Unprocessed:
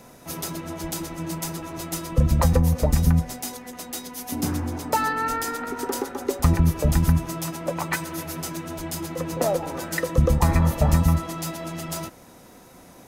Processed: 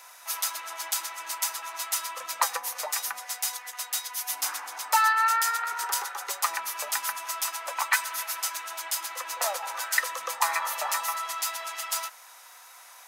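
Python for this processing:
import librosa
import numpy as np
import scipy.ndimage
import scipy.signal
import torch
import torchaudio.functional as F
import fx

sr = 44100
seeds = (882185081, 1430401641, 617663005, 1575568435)

y = scipy.signal.sosfilt(scipy.signal.butter(4, 950.0, 'highpass', fs=sr, output='sos'), x)
y = F.gain(torch.from_numpy(y), 4.0).numpy()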